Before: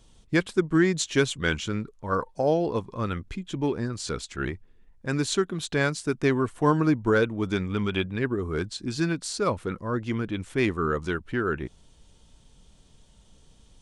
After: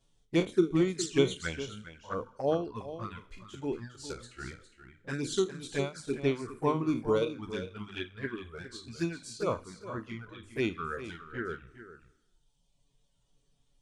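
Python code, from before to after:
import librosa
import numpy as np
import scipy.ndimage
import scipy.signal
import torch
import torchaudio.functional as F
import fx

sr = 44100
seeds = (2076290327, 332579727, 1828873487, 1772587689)

y = fx.spec_trails(x, sr, decay_s=0.87)
y = fx.dereverb_blind(y, sr, rt60_s=1.6)
y = fx.env_flanger(y, sr, rest_ms=7.7, full_db=-20.5)
y = fx.hum_notches(y, sr, base_hz=50, count=6)
y = y + 10.0 ** (-9.0 / 20.0) * np.pad(y, (int(409 * sr / 1000.0), 0))[:len(y)]
y = fx.upward_expand(y, sr, threshold_db=-38.0, expansion=1.5)
y = F.gain(torch.from_numpy(y), -1.5).numpy()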